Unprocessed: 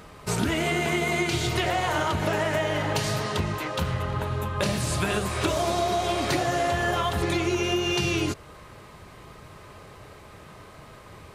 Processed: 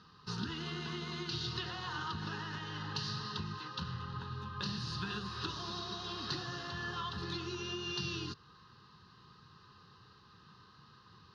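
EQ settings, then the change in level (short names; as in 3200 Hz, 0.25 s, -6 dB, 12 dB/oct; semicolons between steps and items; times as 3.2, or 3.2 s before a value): speaker cabinet 190–5000 Hz, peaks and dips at 280 Hz -6 dB, 860 Hz -4 dB, 1400 Hz -6 dB, 2000 Hz -10 dB, 3300 Hz -9 dB; bell 470 Hz -12 dB 2.7 oct; fixed phaser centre 2300 Hz, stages 6; 0.0 dB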